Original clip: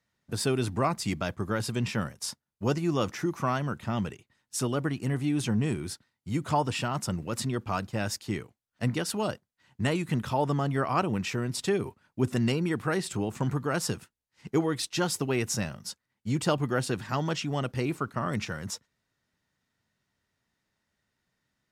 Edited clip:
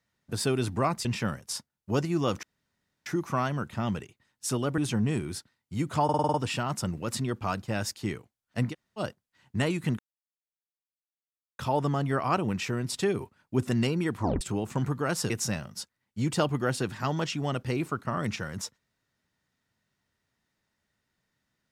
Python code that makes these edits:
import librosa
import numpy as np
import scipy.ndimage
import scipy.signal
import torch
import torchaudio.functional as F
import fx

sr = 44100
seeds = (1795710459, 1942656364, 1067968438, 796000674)

y = fx.edit(x, sr, fx.cut(start_s=1.05, length_s=0.73),
    fx.insert_room_tone(at_s=3.16, length_s=0.63),
    fx.cut(start_s=4.88, length_s=0.45),
    fx.stutter(start_s=6.59, slice_s=0.05, count=7),
    fx.room_tone_fill(start_s=8.97, length_s=0.27, crossfade_s=0.06),
    fx.insert_silence(at_s=10.24, length_s=1.6),
    fx.tape_stop(start_s=12.81, length_s=0.25),
    fx.cut(start_s=13.95, length_s=1.44), tone=tone)